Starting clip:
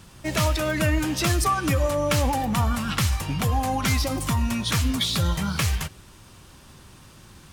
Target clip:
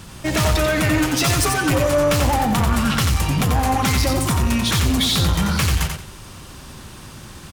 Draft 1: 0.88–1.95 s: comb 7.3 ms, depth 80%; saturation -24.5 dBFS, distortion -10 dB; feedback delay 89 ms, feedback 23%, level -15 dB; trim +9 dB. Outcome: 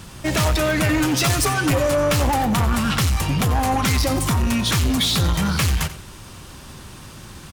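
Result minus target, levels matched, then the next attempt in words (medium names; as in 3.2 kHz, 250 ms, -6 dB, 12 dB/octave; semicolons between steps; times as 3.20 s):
echo-to-direct -10 dB
0.88–1.95 s: comb 7.3 ms, depth 80%; saturation -24.5 dBFS, distortion -10 dB; feedback delay 89 ms, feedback 23%, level -5 dB; trim +9 dB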